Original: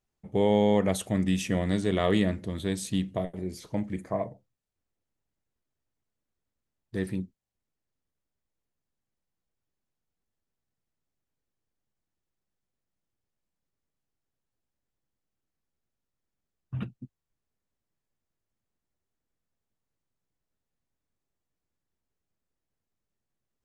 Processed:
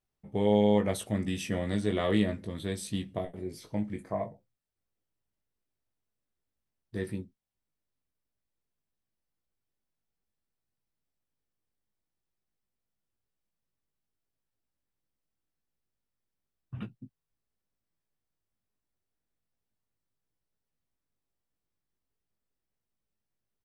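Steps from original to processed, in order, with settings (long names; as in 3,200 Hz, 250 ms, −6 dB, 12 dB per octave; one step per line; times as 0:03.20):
notch filter 6,800 Hz, Q 7
double-tracking delay 19 ms −5.5 dB
level −4 dB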